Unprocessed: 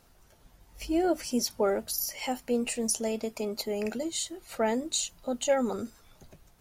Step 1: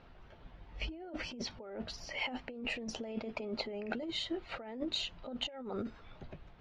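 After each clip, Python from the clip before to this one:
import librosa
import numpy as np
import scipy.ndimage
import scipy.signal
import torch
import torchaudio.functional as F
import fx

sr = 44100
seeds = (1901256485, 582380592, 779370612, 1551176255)

y = scipy.signal.sosfilt(scipy.signal.butter(4, 3400.0, 'lowpass', fs=sr, output='sos'), x)
y = fx.over_compress(y, sr, threshold_db=-38.0, ratio=-1.0)
y = y * librosa.db_to_amplitude(-2.5)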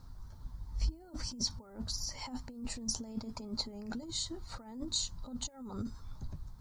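y = fx.curve_eq(x, sr, hz=(100.0, 180.0, 260.0, 370.0, 680.0, 980.0, 2800.0, 4300.0, 8000.0), db=(0, -9, -9, -19, -21, -9, -29, -4, 9))
y = y * librosa.db_to_amplitude(10.0)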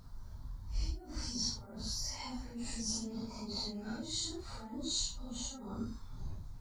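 y = fx.phase_scramble(x, sr, seeds[0], window_ms=200)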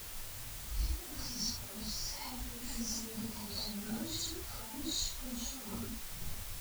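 y = fx.chorus_voices(x, sr, voices=2, hz=0.61, base_ms=14, depth_ms=4.3, mix_pct=70)
y = fx.quant_dither(y, sr, seeds[1], bits=8, dither='triangular')
y = y * librosa.db_to_amplitude(1.0)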